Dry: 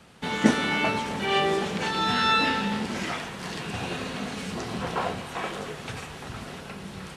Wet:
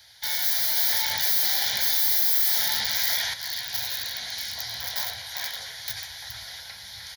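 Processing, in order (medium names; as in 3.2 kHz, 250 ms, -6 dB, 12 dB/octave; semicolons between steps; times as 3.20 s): FFT filter 110 Hz 0 dB, 170 Hz -21 dB, 3.9 kHz +2 dB; integer overflow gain 29 dB; tilt EQ +3 dB/octave; static phaser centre 1.8 kHz, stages 8; doubling 15 ms -14 dB; 0.77–3.34 s: level flattener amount 50%; trim +3.5 dB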